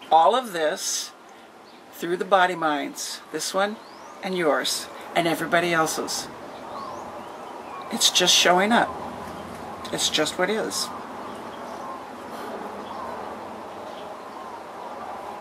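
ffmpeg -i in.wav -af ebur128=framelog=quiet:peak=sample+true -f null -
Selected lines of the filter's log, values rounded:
Integrated loudness:
  I:         -23.2 LUFS
  Threshold: -35.0 LUFS
Loudness range:
  LRA:        13.8 LU
  Threshold: -44.8 LUFS
  LRA low:   -35.2 LUFS
  LRA high:  -21.4 LUFS
Sample peak:
  Peak:       -4.0 dBFS
True peak:
  Peak:       -4.0 dBFS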